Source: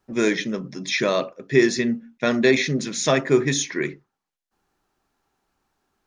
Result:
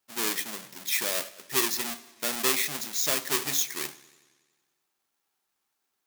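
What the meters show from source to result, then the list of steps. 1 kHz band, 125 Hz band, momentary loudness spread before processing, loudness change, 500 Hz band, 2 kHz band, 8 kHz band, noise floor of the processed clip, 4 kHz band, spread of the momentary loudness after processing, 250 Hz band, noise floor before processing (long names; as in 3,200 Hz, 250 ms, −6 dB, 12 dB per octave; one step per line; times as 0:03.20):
−6.0 dB, −20.5 dB, 8 LU, −5.5 dB, −16.0 dB, −8.0 dB, +1.5 dB, −80 dBFS, −2.0 dB, 10 LU, −17.5 dB, −84 dBFS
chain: each half-wave held at its own peak
spectral tilt +4 dB per octave
feedback echo with a swinging delay time 92 ms, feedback 67%, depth 93 cents, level −20.5 dB
level −15 dB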